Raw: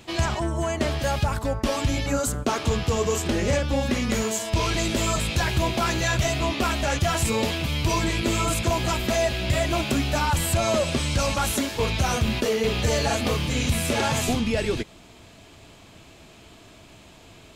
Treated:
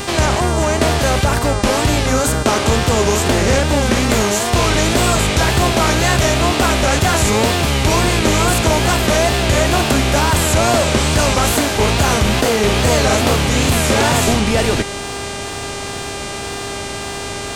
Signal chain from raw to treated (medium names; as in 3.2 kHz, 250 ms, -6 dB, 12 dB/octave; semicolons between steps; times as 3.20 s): spectral levelling over time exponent 0.6; wow and flutter 130 cents; mains buzz 400 Hz, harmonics 24, -33 dBFS -3 dB/octave; trim +5 dB